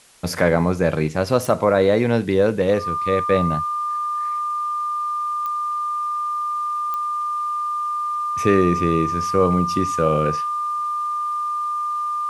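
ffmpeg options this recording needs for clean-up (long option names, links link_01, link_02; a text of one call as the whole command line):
ffmpeg -i in.wav -af "adeclick=threshold=4,bandreject=frequency=1200:width=30,agate=range=-21dB:threshold=-16dB" out.wav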